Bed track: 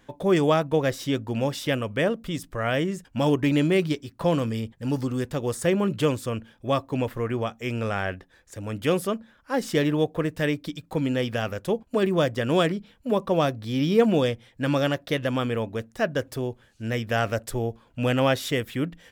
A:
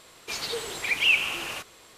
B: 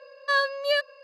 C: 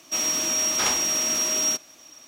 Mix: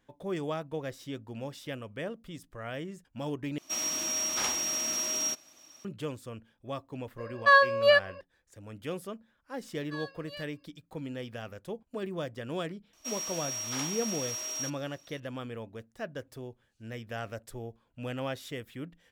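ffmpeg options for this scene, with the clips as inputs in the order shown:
-filter_complex "[3:a]asplit=2[s0][s1];[2:a]asplit=2[s2][s3];[0:a]volume=0.211[s4];[s0]bandreject=f=430:w=12[s5];[s2]equalizer=f=940:w=0.41:g=12[s6];[s3]highpass=f=1300:p=1[s7];[s1]highpass=380[s8];[s4]asplit=2[s9][s10];[s9]atrim=end=3.584[s11];[s5]atrim=end=2.27,asetpts=PTS-STARTPTS,volume=0.422[s12];[s10]atrim=start=5.846[s13];[s6]atrim=end=1.03,asetpts=PTS-STARTPTS,volume=0.501,afade=t=in:d=0.004:c=hsin,afade=t=out:st=1.026:d=0.004:c=hsin,adelay=7180[s14];[s7]atrim=end=1.03,asetpts=PTS-STARTPTS,volume=0.141,afade=t=in:d=0.004:c=hsin,afade=t=out:st=1.026:d=0.004:c=hsin,adelay=9630[s15];[s8]atrim=end=2.27,asetpts=PTS-STARTPTS,volume=0.237,afade=t=in:d=0.004:c=hsin,afade=t=out:st=2.266:d=0.004:c=hsin,adelay=12930[s16];[s11][s12]acrossfade=d=0.004:c1=hsin:c2=hsin[s17];[s17][s13]acrossfade=d=0.004:c1=hsin:c2=hsin[s18];[s18][s14][s15][s16]amix=inputs=4:normalize=0"

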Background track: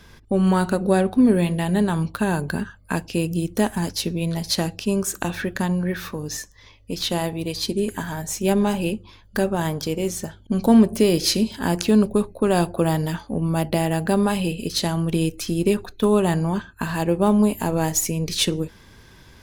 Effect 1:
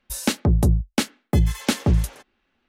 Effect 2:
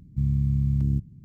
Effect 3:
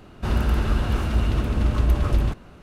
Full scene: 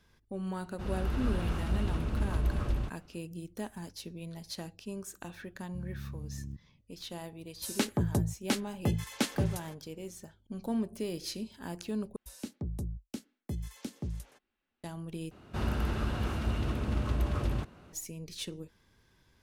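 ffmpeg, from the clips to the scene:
-filter_complex "[3:a]asplit=2[s0][s1];[1:a]asplit=2[s2][s3];[0:a]volume=0.119[s4];[s0]dynaudnorm=f=130:g=7:m=2.51[s5];[2:a]equalizer=f=130:w=1.5:g=-4[s6];[s2]highpass=f=86:w=0.5412,highpass=f=86:w=1.3066[s7];[s3]acrossover=split=420|4000[s8][s9][s10];[s8]acompressor=threshold=0.126:ratio=4[s11];[s9]acompressor=threshold=0.00794:ratio=4[s12];[s10]acompressor=threshold=0.0158:ratio=4[s13];[s11][s12][s13]amix=inputs=3:normalize=0[s14];[s1]highpass=62[s15];[s4]asplit=3[s16][s17][s18];[s16]atrim=end=12.164[s19];[s14]atrim=end=2.68,asetpts=PTS-STARTPTS,volume=0.178[s20];[s17]atrim=start=14.836:end=15.314[s21];[s15]atrim=end=2.62,asetpts=PTS-STARTPTS,volume=0.422[s22];[s18]atrim=start=17.926[s23];[s5]atrim=end=2.62,asetpts=PTS-STARTPTS,volume=0.15,afade=t=in:d=0.004:c=hsin,afade=t=out:st=2.616:d=0.004:c=hsin,adelay=560[s24];[s6]atrim=end=1.24,asetpts=PTS-STARTPTS,volume=0.168,afade=t=in:d=0.004:c=hsin,afade=t=out:st=1.236:d=0.004:c=hsin,adelay=245637S[s25];[s7]atrim=end=2.68,asetpts=PTS-STARTPTS,volume=0.376,afade=t=in:d=0.004:c=hsin,afade=t=out:st=2.676:d=0.004:c=hsin,adelay=7520[s26];[s19][s20]acrossfade=d=0.004:c1=hsin:c2=hsin[s27];[s27][s21]acrossfade=d=0.004:c1=hsin:c2=hsin[s28];[s28][s22]acrossfade=d=0.004:c1=hsin:c2=hsin[s29];[s29][s23]acrossfade=d=0.004:c1=hsin:c2=hsin[s30];[s30][s24][s25][s26]amix=inputs=4:normalize=0"

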